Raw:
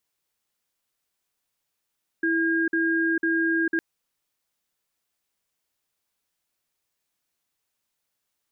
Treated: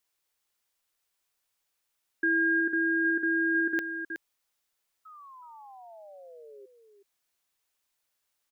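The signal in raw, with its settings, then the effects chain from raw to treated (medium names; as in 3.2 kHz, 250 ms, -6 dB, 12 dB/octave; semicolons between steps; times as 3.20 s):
cadence 329 Hz, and 1.62 kHz, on 0.45 s, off 0.05 s, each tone -23 dBFS 1.56 s
peaking EQ 170 Hz -8 dB 2.1 oct; painted sound fall, 5.05–6.66 s, 390–1300 Hz -49 dBFS; on a send: delay 370 ms -10 dB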